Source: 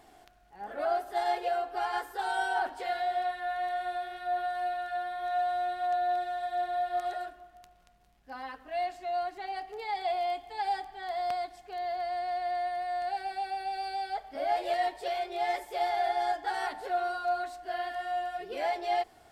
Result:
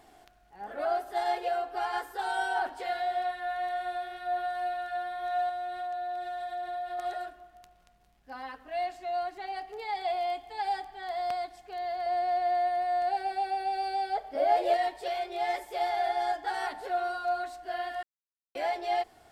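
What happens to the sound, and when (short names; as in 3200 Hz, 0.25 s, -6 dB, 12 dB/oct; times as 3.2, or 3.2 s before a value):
5.49–6.99 compressor 4:1, threshold -33 dBFS
12.06–14.77 bell 490 Hz +9 dB 1.1 oct
18.03–18.55 mute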